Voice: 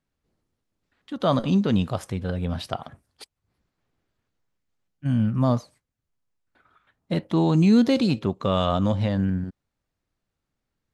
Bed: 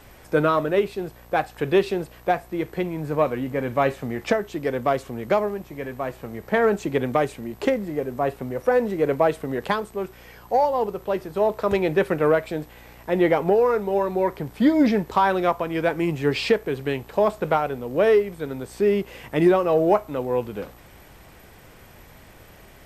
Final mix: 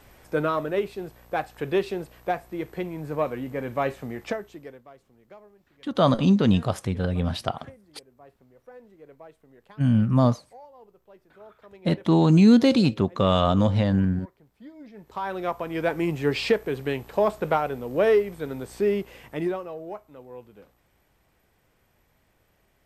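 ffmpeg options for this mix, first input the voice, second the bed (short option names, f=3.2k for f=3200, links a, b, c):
-filter_complex "[0:a]adelay=4750,volume=2dB[a];[1:a]volume=20.5dB,afade=t=out:st=4.08:d=0.75:silence=0.0749894,afade=t=in:st=14.93:d=1.02:silence=0.0530884,afade=t=out:st=18.72:d=1.04:silence=0.149624[b];[a][b]amix=inputs=2:normalize=0"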